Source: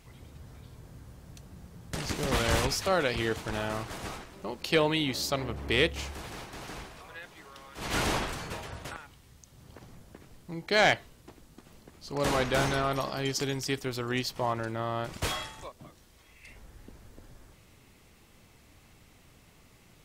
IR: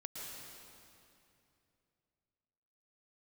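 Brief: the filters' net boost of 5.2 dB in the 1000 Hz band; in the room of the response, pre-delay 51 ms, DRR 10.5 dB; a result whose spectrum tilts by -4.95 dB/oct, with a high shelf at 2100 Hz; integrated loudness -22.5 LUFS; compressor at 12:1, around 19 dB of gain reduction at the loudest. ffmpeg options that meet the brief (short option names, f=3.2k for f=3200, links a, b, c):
-filter_complex "[0:a]equalizer=f=1k:t=o:g=8.5,highshelf=f=2.1k:g=-7,acompressor=threshold=-36dB:ratio=12,asplit=2[a][b];[1:a]atrim=start_sample=2205,adelay=51[c];[b][c]afir=irnorm=-1:irlink=0,volume=-9dB[d];[a][d]amix=inputs=2:normalize=0,volume=19.5dB"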